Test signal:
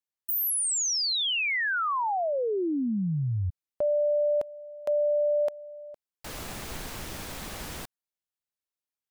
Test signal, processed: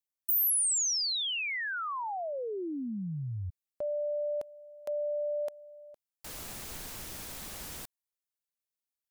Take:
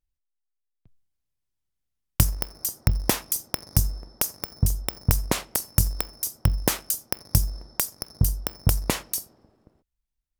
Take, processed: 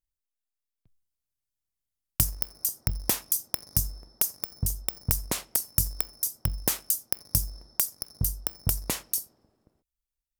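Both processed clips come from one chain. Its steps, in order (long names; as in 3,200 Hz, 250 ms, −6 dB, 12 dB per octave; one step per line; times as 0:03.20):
high-shelf EQ 4,900 Hz +9.5 dB
level −8 dB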